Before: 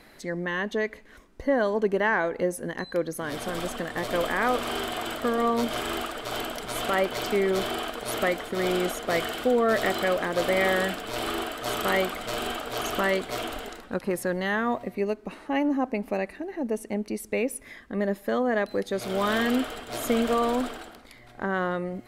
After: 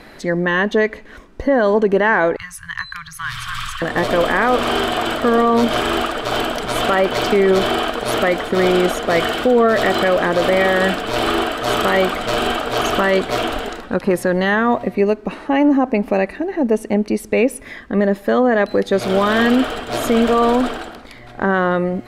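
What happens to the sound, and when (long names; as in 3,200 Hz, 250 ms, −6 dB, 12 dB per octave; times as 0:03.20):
0:02.36–0:03.82: Chebyshev band-stop filter 130–1,100 Hz, order 4
whole clip: high-shelf EQ 6,900 Hz −11.5 dB; notch filter 2,100 Hz, Q 26; boost into a limiter +17.5 dB; level −5 dB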